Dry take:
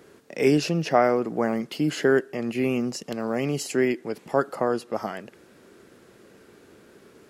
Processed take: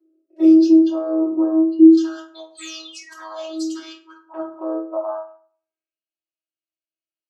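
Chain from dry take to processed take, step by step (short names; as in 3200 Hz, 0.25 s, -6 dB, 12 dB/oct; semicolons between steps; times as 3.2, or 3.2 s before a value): Wiener smoothing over 25 samples; 1.97–4.21 weighting filter ITU-R 468; spectral noise reduction 27 dB; bell 1200 Hz +9 dB 0.85 oct; compressor 2:1, threshold -29 dBFS, peak gain reduction 10.5 dB; limiter -22 dBFS, peak gain reduction 10.5 dB; envelope phaser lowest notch 160 Hz, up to 1900 Hz, full sweep at -35 dBFS; 2.57–3.76 painted sound fall 220–8500 Hz -45 dBFS; robotiser 319 Hz; high-pass sweep 310 Hz -> 3100 Hz, 4.52–6.03; reverb RT60 0.50 s, pre-delay 3 ms, DRR -9 dB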